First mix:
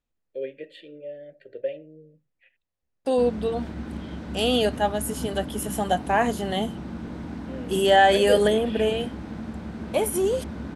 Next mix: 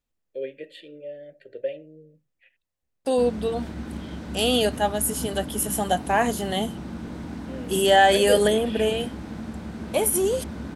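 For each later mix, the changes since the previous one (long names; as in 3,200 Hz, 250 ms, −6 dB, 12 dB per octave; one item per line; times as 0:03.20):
master: add high-shelf EQ 5,900 Hz +9.5 dB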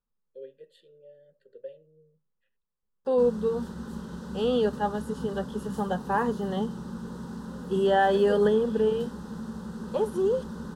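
first voice −9.5 dB
second voice: add low-pass filter 2,200 Hz 12 dB per octave
master: add phaser with its sweep stopped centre 450 Hz, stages 8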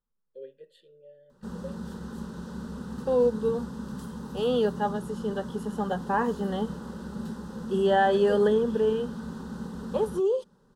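background: entry −1.75 s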